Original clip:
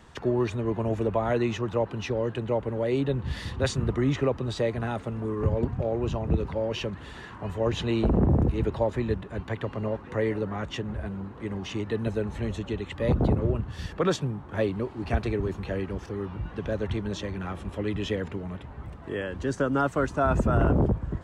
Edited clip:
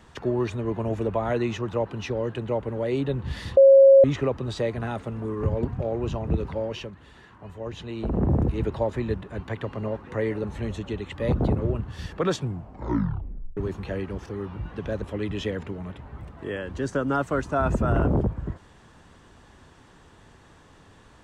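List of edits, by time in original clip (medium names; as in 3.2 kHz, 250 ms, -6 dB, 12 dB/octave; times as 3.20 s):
3.57–4.04 s: bleep 544 Hz -9 dBFS
6.59–8.31 s: dip -8.5 dB, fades 0.35 s
10.44–12.24 s: delete
14.18 s: tape stop 1.19 s
16.82–17.67 s: delete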